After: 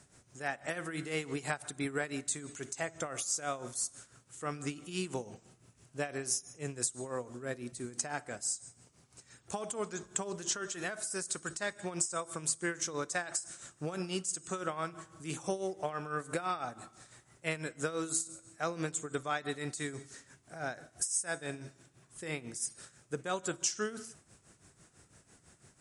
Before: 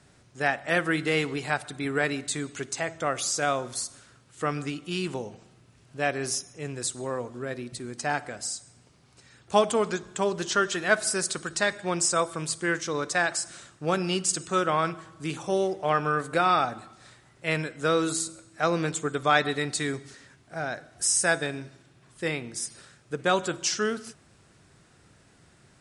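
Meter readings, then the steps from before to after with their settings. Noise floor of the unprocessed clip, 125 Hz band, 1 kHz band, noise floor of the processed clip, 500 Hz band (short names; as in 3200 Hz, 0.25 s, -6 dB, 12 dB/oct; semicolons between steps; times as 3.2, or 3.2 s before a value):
-59 dBFS, -9.0 dB, -12.0 dB, -67 dBFS, -11.0 dB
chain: resonant high shelf 5400 Hz +6.5 dB, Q 1.5; compressor 5:1, threshold -27 dBFS, peak gain reduction 13 dB; tremolo 6 Hz, depth 73%; gain -2 dB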